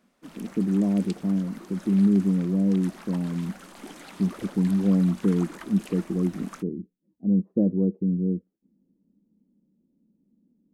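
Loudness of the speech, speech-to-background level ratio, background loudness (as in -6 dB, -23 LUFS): -25.0 LUFS, 20.0 dB, -45.0 LUFS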